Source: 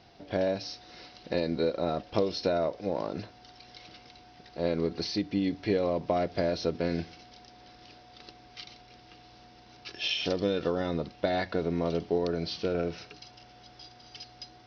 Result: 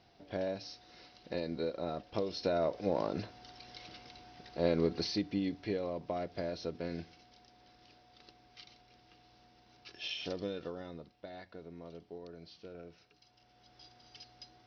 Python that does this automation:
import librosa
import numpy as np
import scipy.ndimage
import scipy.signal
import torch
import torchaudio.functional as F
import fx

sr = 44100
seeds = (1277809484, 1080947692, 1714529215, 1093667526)

y = fx.gain(x, sr, db=fx.line((2.22, -8.0), (2.79, -1.0), (4.87, -1.0), (5.87, -9.5), (10.4, -9.5), (11.24, -19.5), (13.06, -19.5), (13.84, -8.0)))